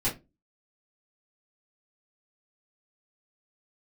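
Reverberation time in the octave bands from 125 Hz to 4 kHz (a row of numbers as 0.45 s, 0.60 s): 0.35 s, 0.35 s, 0.30 s, 0.20 s, 0.20 s, 0.15 s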